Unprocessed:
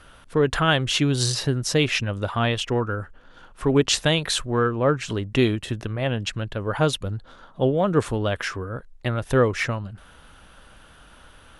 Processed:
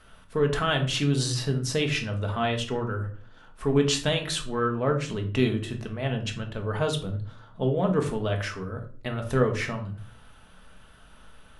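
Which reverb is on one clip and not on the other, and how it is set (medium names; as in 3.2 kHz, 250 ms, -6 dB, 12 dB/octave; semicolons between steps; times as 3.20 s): simulated room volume 420 m³, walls furnished, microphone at 1.5 m; trim -6.5 dB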